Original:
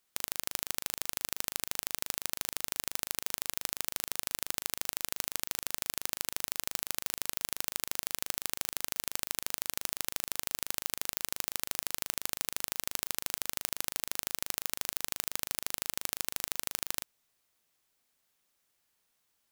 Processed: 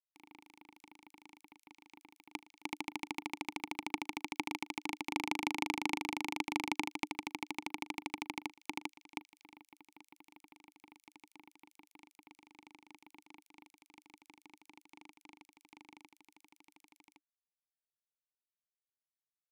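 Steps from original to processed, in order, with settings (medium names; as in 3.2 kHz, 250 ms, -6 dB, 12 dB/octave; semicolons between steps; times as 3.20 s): Doppler pass-by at 5.71 s, 9 m/s, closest 12 m; companded quantiser 2-bit; vowel filter u; trim +14 dB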